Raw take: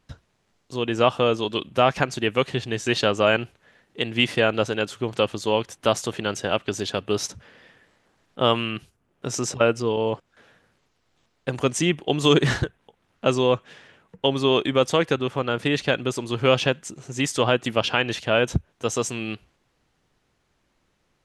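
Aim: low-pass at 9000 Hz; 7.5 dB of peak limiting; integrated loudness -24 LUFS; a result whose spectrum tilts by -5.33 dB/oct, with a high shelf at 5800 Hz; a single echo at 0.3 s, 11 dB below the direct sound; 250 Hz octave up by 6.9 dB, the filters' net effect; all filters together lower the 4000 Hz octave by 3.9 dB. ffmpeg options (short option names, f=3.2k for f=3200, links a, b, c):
-af "lowpass=9k,equalizer=f=250:t=o:g=8.5,equalizer=f=4k:t=o:g=-4,highshelf=f=5.8k:g=-5,alimiter=limit=-10dB:level=0:latency=1,aecho=1:1:300:0.282"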